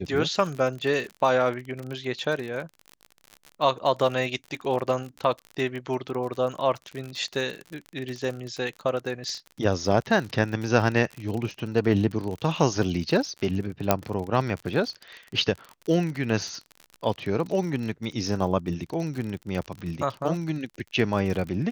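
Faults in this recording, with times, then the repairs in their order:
crackle 48 per s -31 dBFS
13.91 s: pop -4 dBFS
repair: de-click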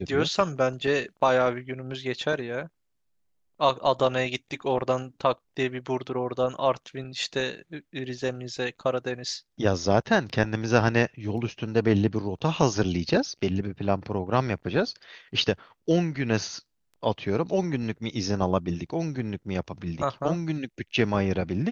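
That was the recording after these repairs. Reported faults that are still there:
nothing left

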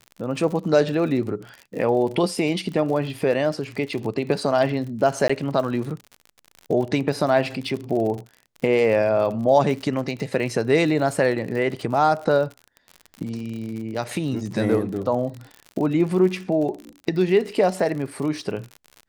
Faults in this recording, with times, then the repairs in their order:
crackle 55 per s -30 dBFS
5.28–5.29 s: dropout 15 ms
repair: de-click; interpolate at 5.28 s, 15 ms

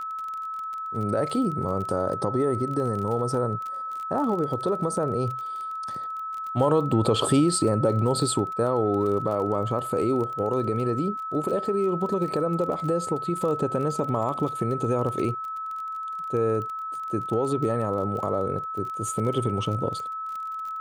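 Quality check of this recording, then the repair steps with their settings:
crackle 25 per s -32 dBFS
whine 1.3 kHz -30 dBFS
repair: de-click; band-stop 1.3 kHz, Q 30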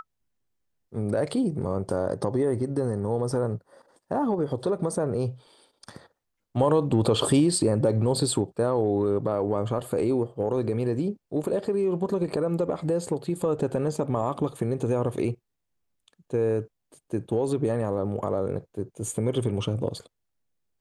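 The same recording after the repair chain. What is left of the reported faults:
nothing left

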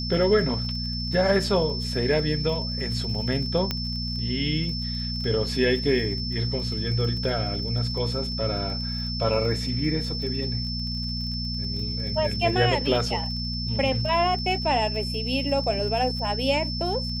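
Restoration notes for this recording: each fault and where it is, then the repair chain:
crackle 26 per s -34 dBFS
hum 60 Hz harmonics 4 -31 dBFS
whine 5.3 kHz -31 dBFS
3.71 s: pop -11 dBFS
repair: de-click; band-stop 5.3 kHz, Q 30; de-hum 60 Hz, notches 4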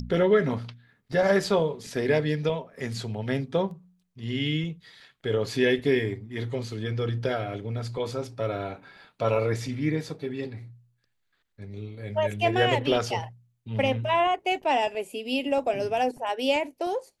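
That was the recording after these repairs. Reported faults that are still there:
3.71 s: pop

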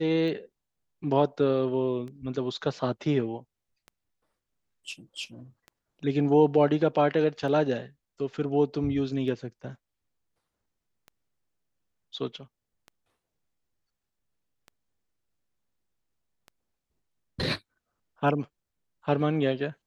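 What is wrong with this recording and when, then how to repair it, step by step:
tick 33 1/3 rpm -30 dBFS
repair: de-click

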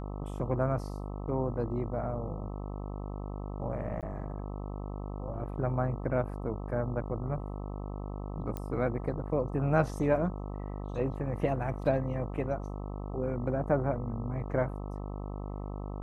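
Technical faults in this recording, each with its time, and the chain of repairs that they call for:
buzz 50 Hz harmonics 26 -38 dBFS
4.01–4.03 s: dropout 17 ms
8.57 s: pop -23 dBFS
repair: de-click; de-hum 50 Hz, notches 26; interpolate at 4.01 s, 17 ms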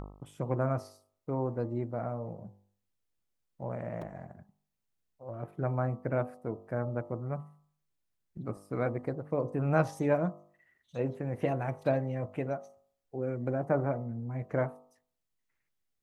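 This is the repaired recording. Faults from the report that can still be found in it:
nothing left

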